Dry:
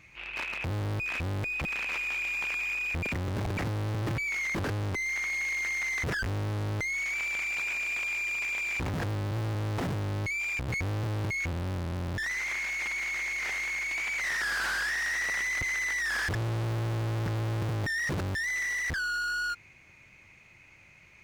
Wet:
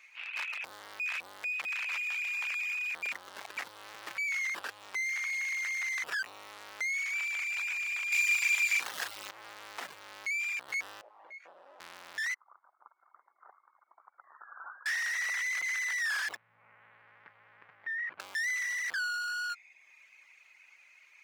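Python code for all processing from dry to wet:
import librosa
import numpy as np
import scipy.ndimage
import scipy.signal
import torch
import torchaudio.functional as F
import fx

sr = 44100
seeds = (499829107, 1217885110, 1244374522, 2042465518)

y = fx.chain(x, sr, fx.high_shelf(hz=2600.0, db=11.0),
    fx.doubler(ms=39.0, db=-5.5), at=(8.12, 9.31))
y = fx.chain(y, sr, fx.bandpass_q(hz=600.0, q=2.1),
    fx.doubler(ms=18.0, db=-4.0), at=(11.01, 11.8))
y = fx.chain(y, sr, fx.envelope_sharpen(power=1.5),
    fx.steep_lowpass(hz=1300.0, slope=72), at=(12.34, 14.86))
y = fx.chain(y, sr, fx.ladder_lowpass(hz=2500.0, resonance_pct=40),
    fx.low_shelf(hz=240.0, db=6.0),
    fx.transformer_sat(knee_hz=120.0), at=(16.36, 18.2))
y = fx.dereverb_blind(y, sr, rt60_s=0.76)
y = scipy.signal.sosfilt(scipy.signal.butter(2, 1100.0, 'highpass', fs=sr, output='sos'), y)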